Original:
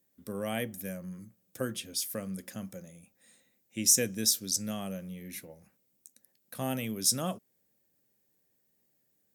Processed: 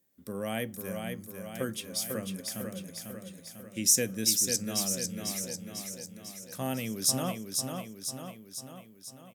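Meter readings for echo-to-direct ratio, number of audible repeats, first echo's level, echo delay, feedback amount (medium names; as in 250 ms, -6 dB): -3.5 dB, 7, -5.0 dB, 497 ms, 57%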